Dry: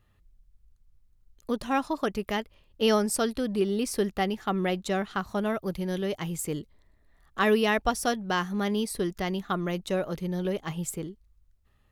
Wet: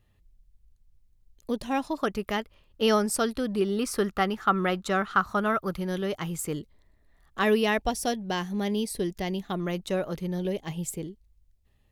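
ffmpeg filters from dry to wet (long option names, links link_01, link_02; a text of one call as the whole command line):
ffmpeg -i in.wav -af "asetnsamples=nb_out_samples=441:pad=0,asendcmd='1.98 equalizer g 3.5;3.77 equalizer g 12.5;5.79 equalizer g 5.5;6.55 equalizer g -2.5;7.8 equalizer g -11;9.6 equalizer g -0.5;10.38 equalizer g -11.5',equalizer=frequency=1300:width_type=o:width=0.57:gain=-8" out.wav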